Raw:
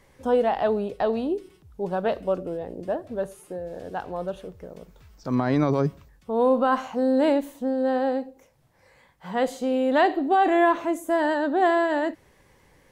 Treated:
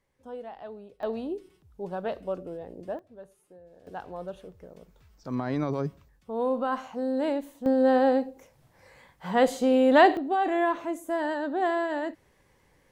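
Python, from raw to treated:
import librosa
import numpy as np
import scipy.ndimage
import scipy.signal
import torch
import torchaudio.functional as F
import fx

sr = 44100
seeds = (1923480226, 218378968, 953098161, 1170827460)

y = fx.gain(x, sr, db=fx.steps((0.0, -18.5), (1.03, -7.0), (2.99, -18.0), (3.87, -7.0), (7.66, 2.5), (10.17, -6.0)))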